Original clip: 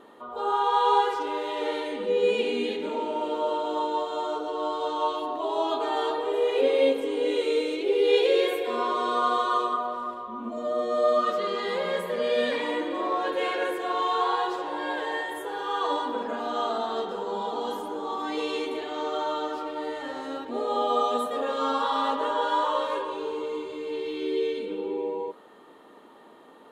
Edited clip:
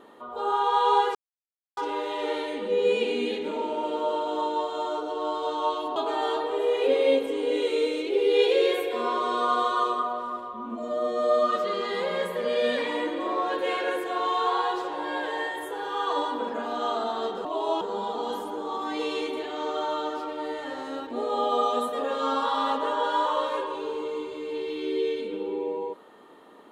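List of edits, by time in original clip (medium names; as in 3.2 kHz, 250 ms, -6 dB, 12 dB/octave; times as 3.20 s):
1.15 s: insert silence 0.62 s
5.34–5.70 s: move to 17.19 s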